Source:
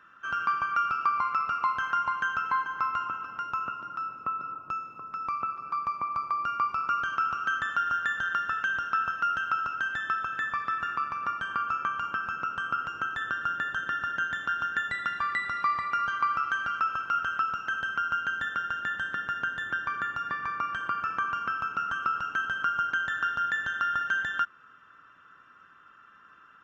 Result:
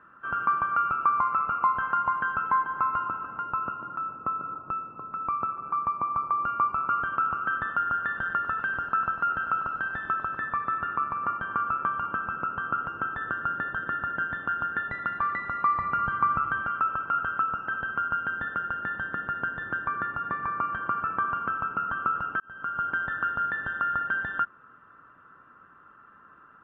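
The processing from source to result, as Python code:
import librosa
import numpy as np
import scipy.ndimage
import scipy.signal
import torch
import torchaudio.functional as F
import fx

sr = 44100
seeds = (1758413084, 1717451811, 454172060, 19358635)

y = fx.echo_crushed(x, sr, ms=99, feedback_pct=35, bits=8, wet_db=-10.0, at=(8.06, 10.38))
y = fx.bass_treble(y, sr, bass_db=9, treble_db=1, at=(15.79, 16.63))
y = fx.edit(y, sr, fx.fade_in_span(start_s=22.4, length_s=0.5), tone=tone)
y = scipy.signal.sosfilt(scipy.signal.butter(2, 1100.0, 'lowpass', fs=sr, output='sos'), y)
y = F.gain(torch.from_numpy(y), 6.5).numpy()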